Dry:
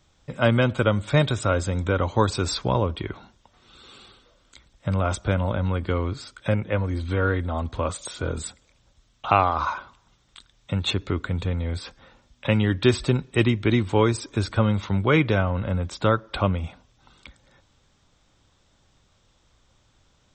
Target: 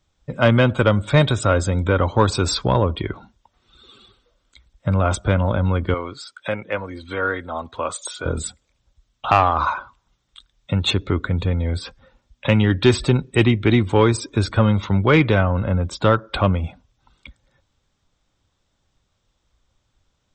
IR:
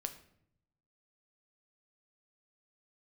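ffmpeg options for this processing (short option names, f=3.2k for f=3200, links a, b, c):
-filter_complex "[0:a]asettb=1/sr,asplit=3[a][b][c];[a]atrim=end=5.944[d];[b]atrim=start=5.94:end=8.26,asetpts=PTS-STARTPTS,afade=t=in:d=0.004:c=qsin,afade=t=out:st=2.316:d=0.004:c=qsin,highpass=f=680:p=1[e];[c]atrim=start=8.256[f];[d][e]acrossfade=d=0.004:c1=hsin:c2=qsin[g];[g][f]acrossfade=d=0.004:c1=qsin:c2=hsin,afftdn=nr=13:nf=-43,acontrast=62,volume=-1dB"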